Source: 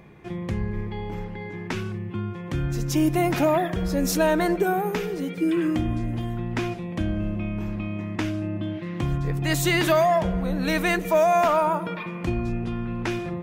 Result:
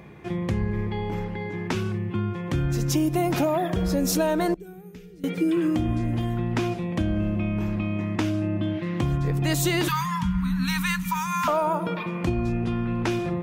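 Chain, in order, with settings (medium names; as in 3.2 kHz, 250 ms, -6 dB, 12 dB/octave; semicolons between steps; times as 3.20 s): high-pass 40 Hz; 4.54–5.24 s: amplifier tone stack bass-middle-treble 10-0-1; 9.88–11.48 s: Chebyshev band-stop 250–930 Hz, order 5; dynamic bell 1.9 kHz, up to -5 dB, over -42 dBFS, Q 1.5; compression, threshold -23 dBFS, peak gain reduction 6.5 dB; trim +3.5 dB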